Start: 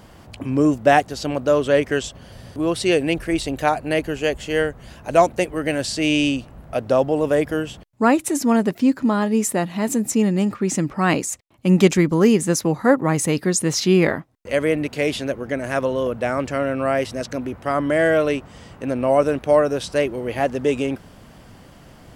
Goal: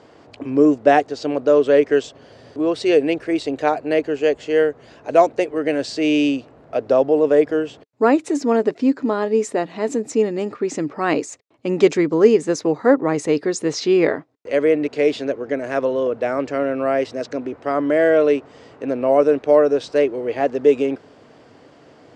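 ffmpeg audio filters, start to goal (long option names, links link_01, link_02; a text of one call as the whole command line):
ffmpeg -i in.wav -af "highpass=160,equalizer=frequency=190:width_type=q:width=4:gain=-10,equalizer=frequency=290:width_type=q:width=4:gain=5,equalizer=frequency=440:width_type=q:width=4:gain=9,equalizer=frequency=650:width_type=q:width=4:gain=3,equalizer=frequency=3100:width_type=q:width=4:gain=-3,equalizer=frequency=5900:width_type=q:width=4:gain=-3,lowpass=frequency=6600:width=0.5412,lowpass=frequency=6600:width=1.3066,volume=-2dB" out.wav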